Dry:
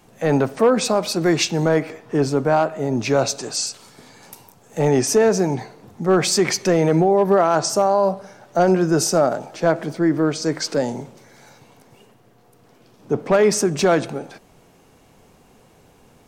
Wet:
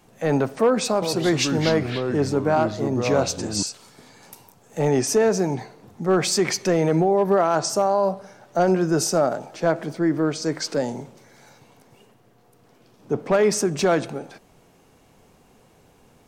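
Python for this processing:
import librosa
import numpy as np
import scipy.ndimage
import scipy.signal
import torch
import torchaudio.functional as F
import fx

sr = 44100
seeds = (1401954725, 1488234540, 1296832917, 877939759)

y = fx.echo_pitch(x, sr, ms=109, semitones=-4, count=2, db_per_echo=-6.0, at=(0.91, 3.63))
y = F.gain(torch.from_numpy(y), -3.0).numpy()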